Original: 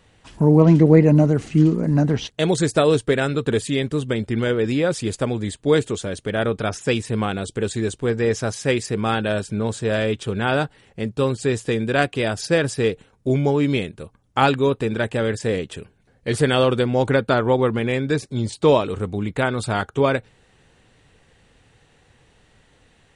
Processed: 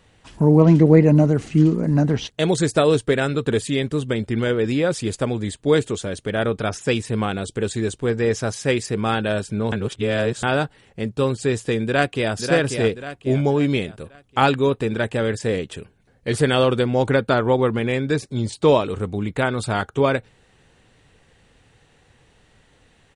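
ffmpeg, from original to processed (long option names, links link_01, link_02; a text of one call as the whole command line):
ffmpeg -i in.wav -filter_complex "[0:a]asplit=2[link_01][link_02];[link_02]afade=type=in:start_time=11.85:duration=0.01,afade=type=out:start_time=12.34:duration=0.01,aecho=0:1:540|1080|1620|2160|2700:0.501187|0.200475|0.08019|0.032076|0.0128304[link_03];[link_01][link_03]amix=inputs=2:normalize=0,asplit=3[link_04][link_05][link_06];[link_04]atrim=end=9.722[link_07];[link_05]atrim=start=9.718:end=10.432,asetpts=PTS-STARTPTS,areverse[link_08];[link_06]atrim=start=10.428[link_09];[link_07][link_08]acrossfade=duration=0.004:curve1=hsin:curve2=hsin[link_10];[link_10][link_09]acrossfade=duration=0.004:curve1=hsin:curve2=hsin" out.wav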